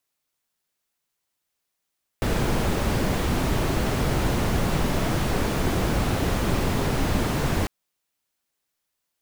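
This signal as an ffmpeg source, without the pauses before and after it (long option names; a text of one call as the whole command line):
ffmpeg -f lavfi -i "anoisesrc=color=brown:amplitude=0.351:duration=5.45:sample_rate=44100:seed=1" out.wav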